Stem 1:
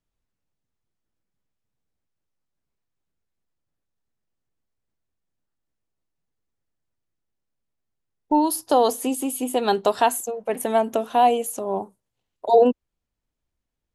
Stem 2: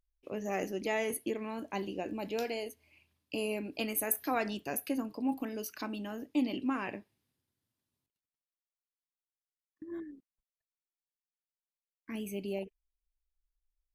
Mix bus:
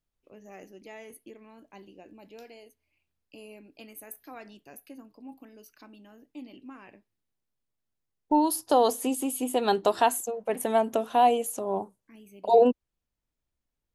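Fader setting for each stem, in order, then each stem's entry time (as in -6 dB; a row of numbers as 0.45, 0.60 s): -3.5, -12.5 dB; 0.00, 0.00 s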